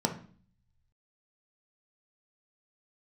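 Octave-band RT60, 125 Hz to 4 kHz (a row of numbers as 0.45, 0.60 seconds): 1.3, 0.75, 0.45, 0.45, 0.40, 0.45 seconds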